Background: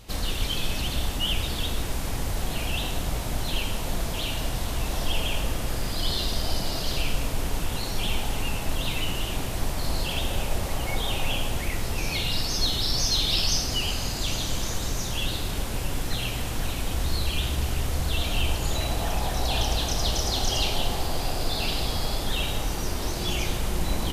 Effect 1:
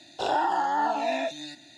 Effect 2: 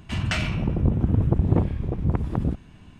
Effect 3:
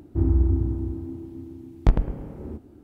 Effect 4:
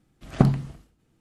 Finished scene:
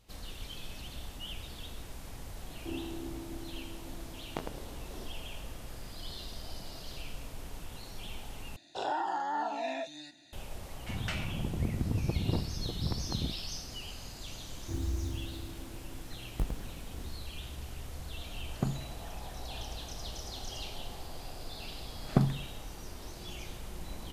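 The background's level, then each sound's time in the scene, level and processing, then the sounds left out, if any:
background -16 dB
2.50 s: add 3 -6.5 dB + Bessel high-pass 420 Hz
8.56 s: replace with 1 -8 dB
10.77 s: add 2 -11 dB
14.53 s: add 3 -14.5 dB + sampling jitter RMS 0.033 ms
18.22 s: add 4 -14.5 dB
21.76 s: add 4 -7.5 dB

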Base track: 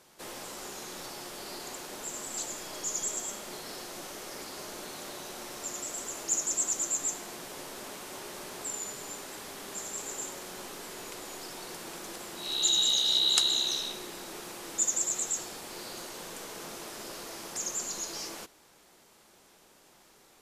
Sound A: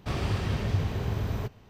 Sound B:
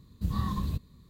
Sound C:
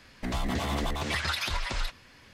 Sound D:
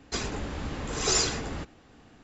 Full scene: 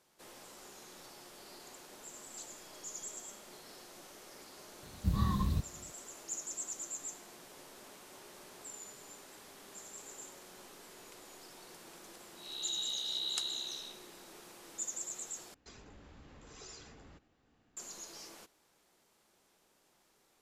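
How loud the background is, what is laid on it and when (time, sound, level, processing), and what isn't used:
base track -11.5 dB
4.83 s: add B -1 dB
15.54 s: replace with D -17 dB + compression 2:1, threshold -38 dBFS
not used: A, C

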